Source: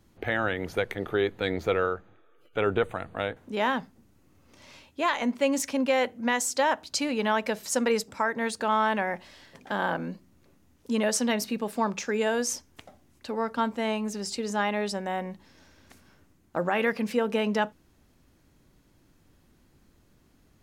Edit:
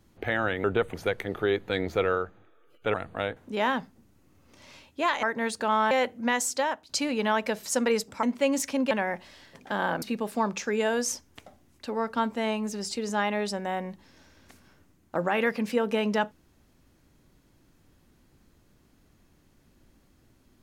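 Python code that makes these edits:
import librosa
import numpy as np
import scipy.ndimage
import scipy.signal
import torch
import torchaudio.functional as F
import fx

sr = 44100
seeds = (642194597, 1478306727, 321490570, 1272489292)

y = fx.edit(x, sr, fx.move(start_s=2.65, length_s=0.29, to_s=0.64),
    fx.swap(start_s=5.23, length_s=0.68, other_s=8.23, other_length_s=0.68),
    fx.fade_out_to(start_s=6.47, length_s=0.42, floor_db=-12.0),
    fx.cut(start_s=10.02, length_s=1.41), tone=tone)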